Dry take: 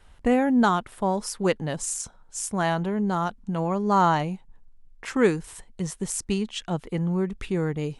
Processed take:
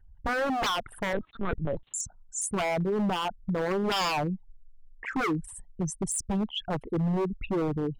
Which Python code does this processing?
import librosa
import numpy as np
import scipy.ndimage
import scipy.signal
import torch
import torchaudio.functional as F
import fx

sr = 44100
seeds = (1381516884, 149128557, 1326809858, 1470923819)

y = fx.envelope_sharpen(x, sr, power=3.0)
y = 10.0 ** (-22.5 / 20.0) * (np.abs((y / 10.0 ** (-22.5 / 20.0) + 3.0) % 4.0 - 2.0) - 1.0)
y = fx.lpc_vocoder(y, sr, seeds[0], excitation='pitch_kept', order=8, at=(1.13, 1.94))